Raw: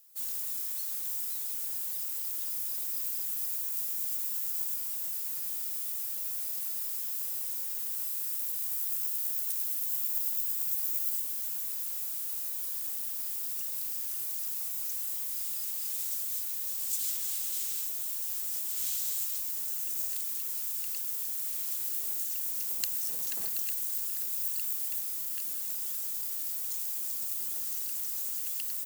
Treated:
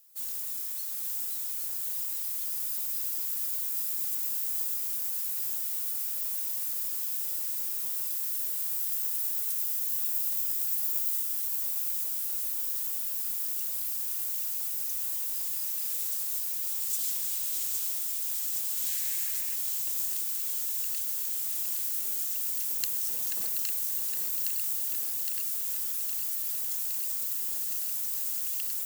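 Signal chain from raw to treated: thinning echo 0.814 s, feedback 75%, high-pass 170 Hz, level -5 dB; 18.88–19.54 band noise 1600–2800 Hz -53 dBFS

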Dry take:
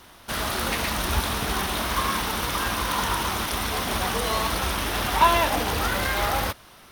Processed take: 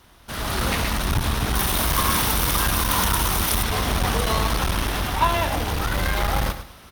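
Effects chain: octaver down 2 oct, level -2 dB; HPF 60 Hz 6 dB/oct; low shelf 120 Hz +11.5 dB; feedback echo 0.107 s, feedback 31%, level -13 dB; AGC; 1.55–3.63 high shelf 7300 Hz +11 dB; core saturation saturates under 270 Hz; gain -5.5 dB

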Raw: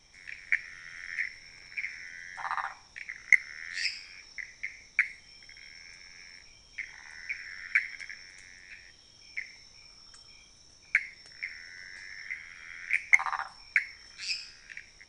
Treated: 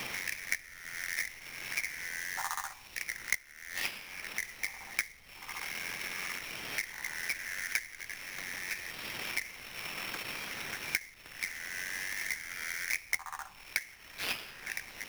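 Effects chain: delay with a stepping band-pass 0.744 s, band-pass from 230 Hz, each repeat 0.7 oct, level -12 dB; sample-rate reducer 7900 Hz, jitter 20%; three-band squash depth 100%; gain -1.5 dB

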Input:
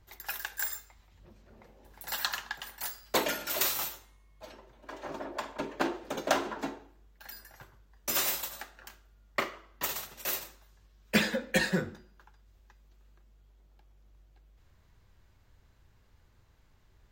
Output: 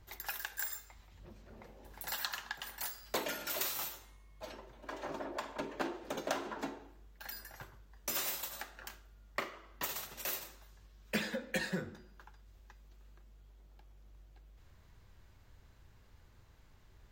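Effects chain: compressor 2:1, threshold -43 dBFS, peak gain reduction 13 dB; gain +2 dB

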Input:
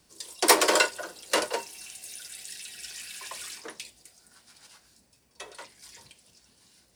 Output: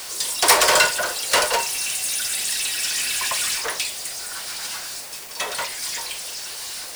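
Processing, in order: Bessel high-pass 700 Hz, order 6; power-law curve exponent 0.5; requantised 6-bit, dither none

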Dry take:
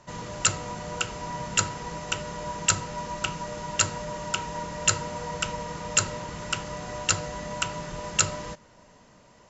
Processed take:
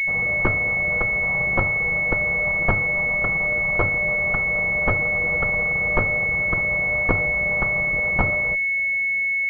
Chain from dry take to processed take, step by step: minimum comb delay 1.6 ms; pulse-width modulation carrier 2200 Hz; gain +7 dB

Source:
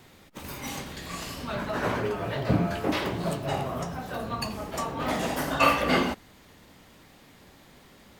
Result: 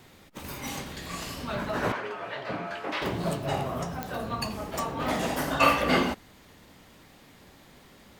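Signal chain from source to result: 1.92–3.02 band-pass 1700 Hz, Q 0.59; pops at 4.03/4.79, -16 dBFS

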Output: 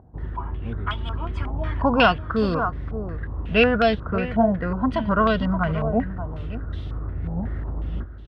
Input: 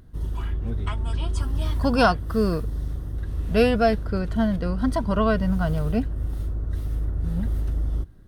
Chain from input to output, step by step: HPF 58 Hz; echo 0.576 s -12 dB; stepped low-pass 5.5 Hz 800–3400 Hz

